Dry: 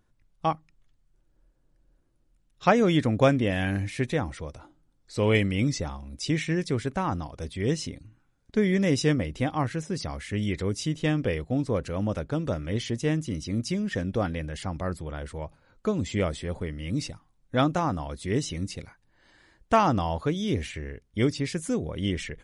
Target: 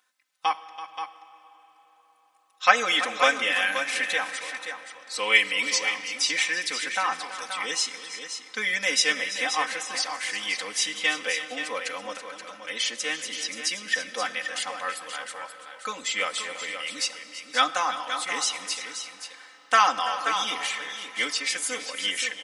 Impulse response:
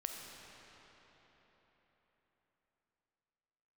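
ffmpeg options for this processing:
-filter_complex "[0:a]highpass=1.4k,aecho=1:1:3.9:1,asettb=1/sr,asplit=3[a][b][c];[a]atrim=end=12.174[d];[b]atrim=start=12.17:end=12.65,asetpts=PTS-STARTPTS,afade=t=in:d=0.004:c=qsin,afade=t=out:st=0.476:d=0.004:c=qsin,acompressor=threshold=-51dB:ratio=4[e];[c]atrim=start=12.646[f];[d][e]acrossfade=d=0.004:c1=hsin:c2=qsin[g];[g][f]acrossfade=d=0.004:c1=qsin:c2=hsin,aecho=1:1:332|528:0.2|0.355,asplit=2[h][i];[1:a]atrim=start_sample=2205[j];[i][j]afir=irnorm=-1:irlink=0,volume=-7dB[k];[h][k]amix=inputs=2:normalize=0,volume=5dB"

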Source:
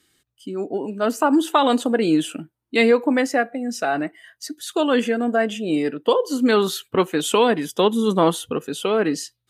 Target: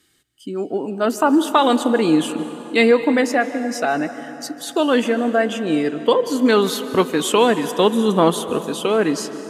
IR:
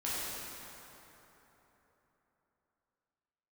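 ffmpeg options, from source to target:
-filter_complex "[0:a]asplit=2[a][b];[1:a]atrim=start_sample=2205,adelay=150[c];[b][c]afir=irnorm=-1:irlink=0,volume=-17.5dB[d];[a][d]amix=inputs=2:normalize=0,volume=2dB"

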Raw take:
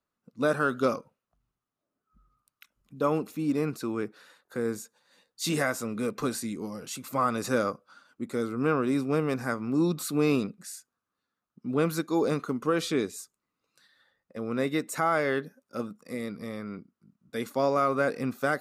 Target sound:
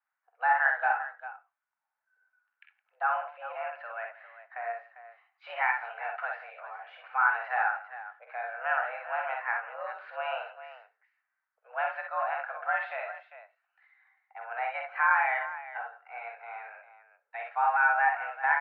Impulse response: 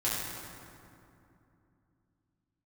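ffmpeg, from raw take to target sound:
-filter_complex "[0:a]aecho=1:1:48|61|165|399:0.501|0.531|0.119|0.224,asplit=2[a][b];[1:a]atrim=start_sample=2205,atrim=end_sample=4410[c];[b][c]afir=irnorm=-1:irlink=0,volume=-18.5dB[d];[a][d]amix=inputs=2:normalize=0,highpass=f=560:t=q:w=0.5412,highpass=f=560:t=q:w=1.307,lowpass=f=2.2k:t=q:w=0.5176,lowpass=f=2.2k:t=q:w=0.7071,lowpass=f=2.2k:t=q:w=1.932,afreqshift=240"

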